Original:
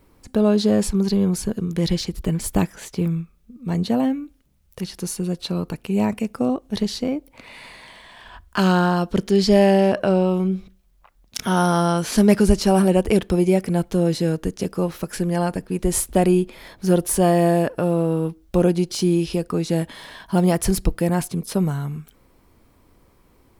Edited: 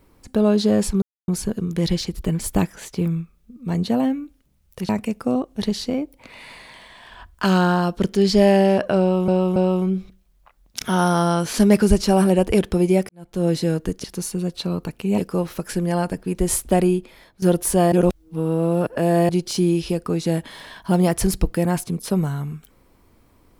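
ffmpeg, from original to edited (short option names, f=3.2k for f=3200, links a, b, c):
-filter_complex "[0:a]asplit=12[a][b][c][d][e][f][g][h][i][j][k][l];[a]atrim=end=1.02,asetpts=PTS-STARTPTS,afade=t=out:st=1.016:d=0.004:c=hsin[m];[b]atrim=start=1.02:end=1.28,asetpts=PTS-STARTPTS,volume=0[n];[c]atrim=start=1.28:end=4.892,asetpts=PTS-STARTPTS,afade=t=in:d=0.004:c=hsin[o];[d]atrim=start=6.028:end=10.422[p];[e]atrim=start=10.138:end=10.422[q];[f]atrim=start=10.138:end=13.67,asetpts=PTS-STARTPTS,afade=t=out:st=3.528:d=0.004:c=hsin[r];[g]atrim=start=13.67:end=14.622,asetpts=PTS-STARTPTS,afade=t=in:d=0.37:c=qua[s];[h]atrim=start=4.888:end=6.032[t];[i]atrim=start=14.618:end=16.86,asetpts=PTS-STARTPTS,afade=t=out:st=1.592:d=0.65:silence=0.16788[u];[j]atrim=start=16.86:end=17.362,asetpts=PTS-STARTPTS,afade=t=in:d=0.004:c=hsin:silence=0.16788[v];[k]atrim=start=17.358:end=18.732,asetpts=PTS-STARTPTS,areverse[w];[l]atrim=start=18.728[x];[m][n][o]concat=n=3:v=0:a=1[y];[y][p]acrossfade=d=0.004:c1=hsin:c2=hsin[z];[z][q]acrossfade=d=0.004:c1=hsin:c2=hsin[aa];[r][s]concat=n=2:v=0:a=1[ab];[aa][ab]acrossfade=d=0.004:c1=hsin:c2=hsin[ac];[ac][t]acrossfade=d=0.004:c1=hsin:c2=hsin[ad];[u][v]concat=n=2:v=0:a=1[ae];[ad][ae]acrossfade=d=0.004:c1=hsin:c2=hsin[af];[af][w]acrossfade=d=0.004:c1=hsin:c2=hsin[ag];[ag][x]acrossfade=d=0.004:c1=hsin:c2=hsin"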